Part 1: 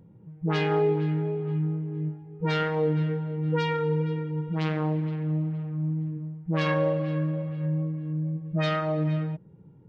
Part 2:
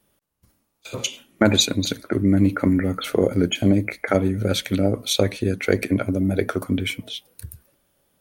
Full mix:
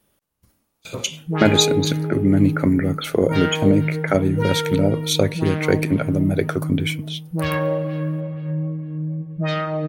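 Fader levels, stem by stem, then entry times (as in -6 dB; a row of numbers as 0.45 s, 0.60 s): +3.0 dB, +1.0 dB; 0.85 s, 0.00 s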